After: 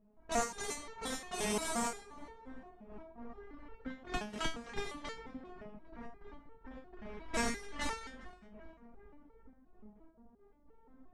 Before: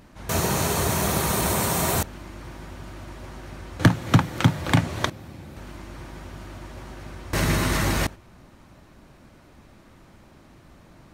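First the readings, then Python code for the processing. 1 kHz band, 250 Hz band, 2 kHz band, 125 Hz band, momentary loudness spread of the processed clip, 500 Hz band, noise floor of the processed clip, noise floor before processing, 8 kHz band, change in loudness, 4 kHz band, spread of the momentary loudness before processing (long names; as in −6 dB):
−12.5 dB, −16.5 dB, −13.5 dB, −29.5 dB, 20 LU, −12.0 dB, −64 dBFS, −52 dBFS, −13.5 dB, −17.0 dB, −13.5 dB, 19 LU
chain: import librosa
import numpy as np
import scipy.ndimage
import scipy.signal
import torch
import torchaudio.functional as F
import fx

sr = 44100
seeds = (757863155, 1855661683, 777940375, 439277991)

y = fx.cycle_switch(x, sr, every=3, mode='muted')
y = fx.low_shelf(y, sr, hz=150.0, db=-9.0)
y = 10.0 ** (-18.0 / 20.0) * np.tanh(y / 10.0 ** (-18.0 / 20.0))
y = fx.rider(y, sr, range_db=10, speed_s=0.5)
y = fx.low_shelf(y, sr, hz=68.0, db=10.0)
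y = fx.step_gate(y, sr, bpm=104, pattern='..x.x..x.xxxx', floor_db=-12.0, edge_ms=4.5)
y = scipy.signal.sosfilt(scipy.signal.butter(4, 9800.0, 'lowpass', fs=sr, output='sos'), y)
y = fx.env_lowpass(y, sr, base_hz=690.0, full_db=-27.0)
y = y + 0.5 * np.pad(y, (int(4.4 * sr / 1000.0), 0))[:len(y)]
y = fx.echo_filtered(y, sr, ms=400, feedback_pct=74, hz=1300.0, wet_db=-14.0)
y = fx.resonator_held(y, sr, hz=5.7, low_hz=210.0, high_hz=450.0)
y = F.gain(torch.from_numpy(y), 7.0).numpy()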